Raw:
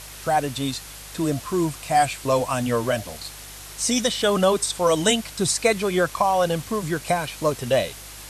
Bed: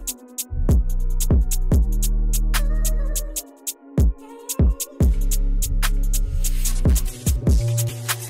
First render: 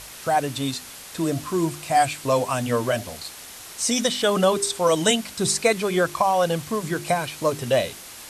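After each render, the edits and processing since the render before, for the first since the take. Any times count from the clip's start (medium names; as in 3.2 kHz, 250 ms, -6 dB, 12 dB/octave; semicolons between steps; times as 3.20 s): de-hum 50 Hz, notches 8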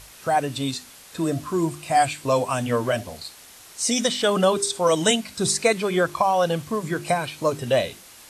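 noise print and reduce 6 dB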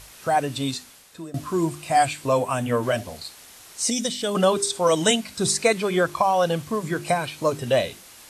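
0.74–1.34 s: fade out, to -20.5 dB; 2.22–2.83 s: dynamic bell 4.9 kHz, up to -7 dB, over -48 dBFS, Q 1.3; 3.90–4.35 s: peaking EQ 1.2 kHz -10 dB 2.8 oct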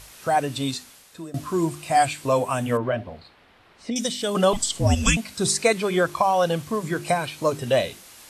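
2.77–3.96 s: distance through air 420 m; 4.53–5.17 s: frequency shift -400 Hz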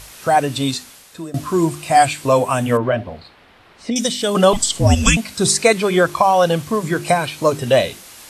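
trim +6.5 dB; peak limiter -1 dBFS, peak gain reduction 1.5 dB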